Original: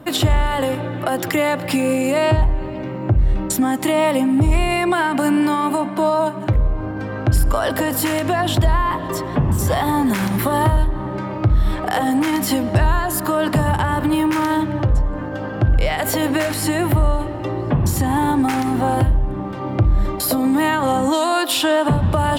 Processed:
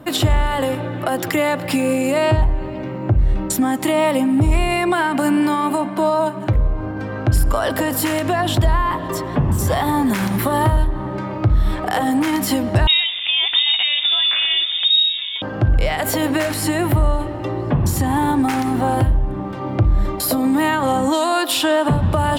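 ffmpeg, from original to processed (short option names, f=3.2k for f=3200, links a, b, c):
-filter_complex "[0:a]asettb=1/sr,asplit=3[a][b][c];[a]atrim=end=12.874[d];[b]atrim=start=12.87:end=15.42,asetpts=PTS-STARTPTS,afade=t=in:d=0.004:c=qsin,afade=t=out:st=2.546:d=0.004:c=qsin,lowpass=f=3.2k:t=q:w=0.5098,lowpass=f=3.2k:t=q:w=0.6013,lowpass=f=3.2k:t=q:w=0.9,lowpass=f=3.2k:t=q:w=2.563,afreqshift=-3800[e];[c]atrim=start=15.416[f];[d][e]acrossfade=d=0.004:c1=hsin:c2=qsin[g];[g][f]acrossfade=d=0.004:c1=qsin:c2=hsin"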